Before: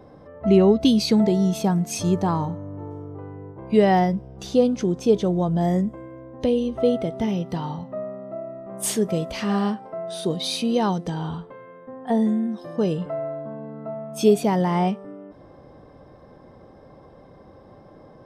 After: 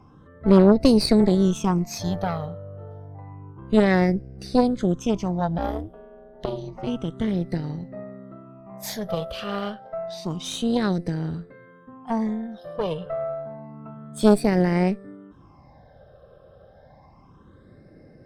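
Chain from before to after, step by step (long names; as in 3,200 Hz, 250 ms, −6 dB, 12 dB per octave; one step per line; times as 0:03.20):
all-pass phaser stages 8, 0.29 Hz, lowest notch 270–1,000 Hz
0:05.58–0:06.87: ring modulation 110 Hz
harmonic generator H 4 −9 dB, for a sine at −7 dBFS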